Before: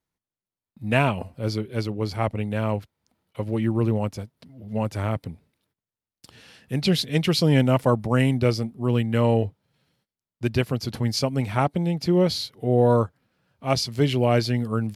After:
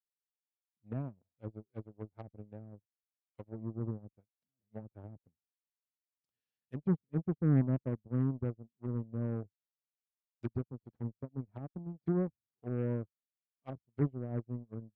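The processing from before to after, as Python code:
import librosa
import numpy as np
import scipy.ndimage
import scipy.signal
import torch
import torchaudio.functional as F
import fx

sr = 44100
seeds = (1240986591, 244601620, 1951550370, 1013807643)

y = fx.env_lowpass_down(x, sr, base_hz=320.0, full_db=-20.5)
y = fx.cheby_harmonics(y, sr, harmonics=(7,), levels_db=(-23,), full_scale_db=-12.0)
y = fx.upward_expand(y, sr, threshold_db=-42.0, expansion=2.5)
y = y * 10.0 ** (-6.5 / 20.0)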